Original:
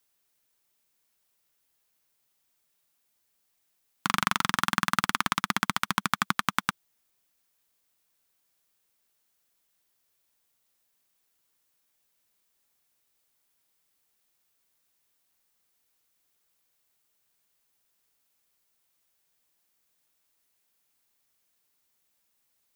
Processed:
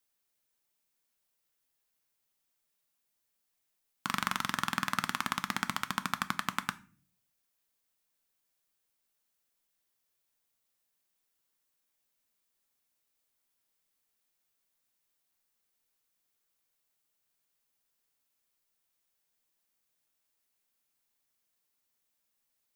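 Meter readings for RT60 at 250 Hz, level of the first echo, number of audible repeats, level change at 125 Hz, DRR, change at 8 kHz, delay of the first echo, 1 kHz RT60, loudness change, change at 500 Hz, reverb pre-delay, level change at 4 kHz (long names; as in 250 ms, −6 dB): 0.70 s, no echo audible, no echo audible, −6.5 dB, 11.5 dB, −6.0 dB, no echo audible, 0.35 s, −6.0 dB, −6.5 dB, 4 ms, −6.5 dB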